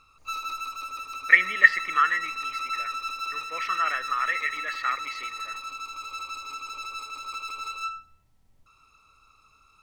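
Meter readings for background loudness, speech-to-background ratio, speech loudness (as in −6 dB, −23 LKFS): −33.0 LKFS, 10.5 dB, −22.5 LKFS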